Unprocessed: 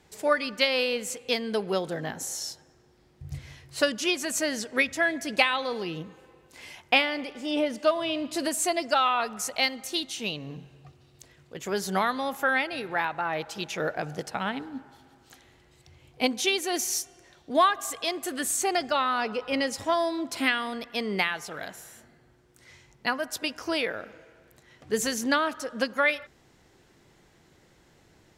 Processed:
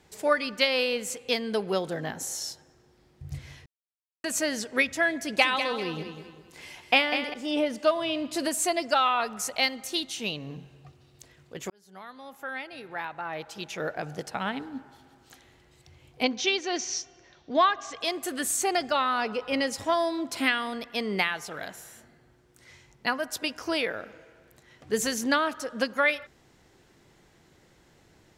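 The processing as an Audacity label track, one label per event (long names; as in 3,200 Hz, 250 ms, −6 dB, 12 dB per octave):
3.660000	4.240000	silence
5.210000	7.340000	repeating echo 197 ms, feedback 36%, level −8.5 dB
11.700000	14.640000	fade in
16.230000	18.010000	Chebyshev low-pass filter 6,000 Hz, order 4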